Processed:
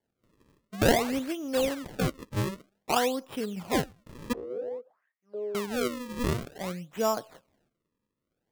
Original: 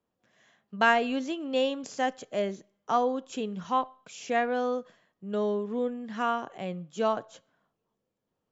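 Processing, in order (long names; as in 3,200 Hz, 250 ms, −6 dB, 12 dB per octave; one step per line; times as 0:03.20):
sample-and-hold swept by an LFO 34×, swing 160% 0.53 Hz
0:04.33–0:05.55: envelope filter 460–2,600 Hz, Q 5.8, down, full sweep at −29.5 dBFS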